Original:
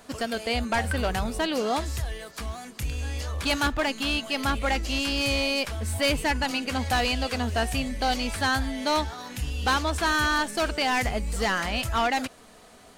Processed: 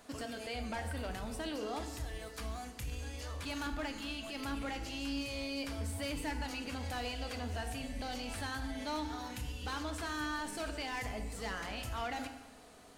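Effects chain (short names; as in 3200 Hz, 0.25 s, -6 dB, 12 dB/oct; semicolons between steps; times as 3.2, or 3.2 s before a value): limiter -26 dBFS, peak gain reduction 10.5 dB; FDN reverb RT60 1.1 s, low-frequency decay 1.25×, high-frequency decay 0.85×, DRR 5.5 dB; gain -7.5 dB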